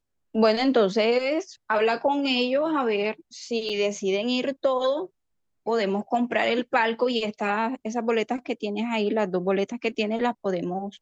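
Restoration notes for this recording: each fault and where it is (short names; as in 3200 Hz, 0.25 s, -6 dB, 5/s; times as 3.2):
3.69–3.7 gap 5.8 ms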